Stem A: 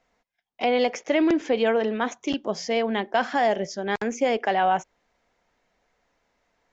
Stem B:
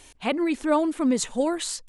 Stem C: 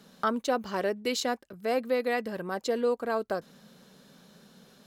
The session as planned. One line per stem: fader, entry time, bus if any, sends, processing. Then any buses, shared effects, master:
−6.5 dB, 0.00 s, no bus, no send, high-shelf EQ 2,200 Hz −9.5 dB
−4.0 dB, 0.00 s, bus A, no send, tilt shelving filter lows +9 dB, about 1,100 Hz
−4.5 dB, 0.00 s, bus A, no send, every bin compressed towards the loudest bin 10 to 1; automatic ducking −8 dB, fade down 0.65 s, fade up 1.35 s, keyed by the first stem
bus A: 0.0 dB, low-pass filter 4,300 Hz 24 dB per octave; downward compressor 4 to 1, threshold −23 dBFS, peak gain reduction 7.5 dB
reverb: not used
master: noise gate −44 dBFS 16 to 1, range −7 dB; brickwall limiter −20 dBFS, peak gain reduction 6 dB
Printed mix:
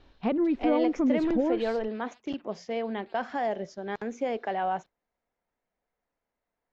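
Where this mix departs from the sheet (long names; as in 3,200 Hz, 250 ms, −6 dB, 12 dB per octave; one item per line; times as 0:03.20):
stem C −4.5 dB → −16.5 dB
master: missing brickwall limiter −20 dBFS, peak gain reduction 6 dB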